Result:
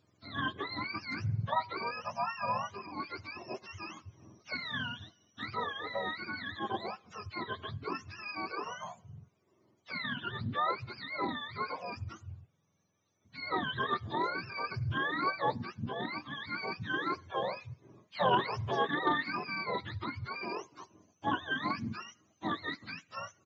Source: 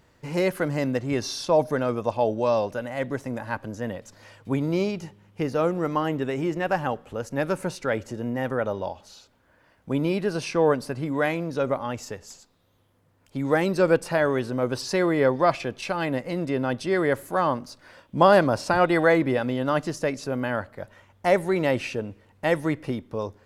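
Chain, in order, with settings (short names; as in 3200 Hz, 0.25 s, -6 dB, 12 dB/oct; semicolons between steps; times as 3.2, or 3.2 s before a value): spectrum mirrored in octaves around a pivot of 770 Hz; downsampling 16000 Hz; Doppler distortion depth 0.15 ms; gain -9 dB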